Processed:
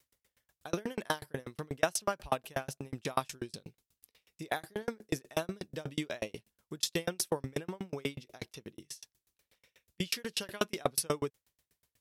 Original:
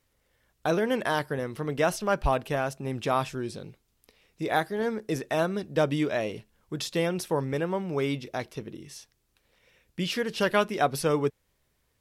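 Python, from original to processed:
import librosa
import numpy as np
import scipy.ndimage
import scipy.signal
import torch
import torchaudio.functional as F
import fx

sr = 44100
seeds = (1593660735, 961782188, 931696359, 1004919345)

y = scipy.signal.sosfilt(scipy.signal.butter(2, 42.0, 'highpass', fs=sr, output='sos'), x)
y = fx.high_shelf(y, sr, hz=3000.0, db=10.5)
y = fx.tremolo_decay(y, sr, direction='decaying', hz=8.2, depth_db=38)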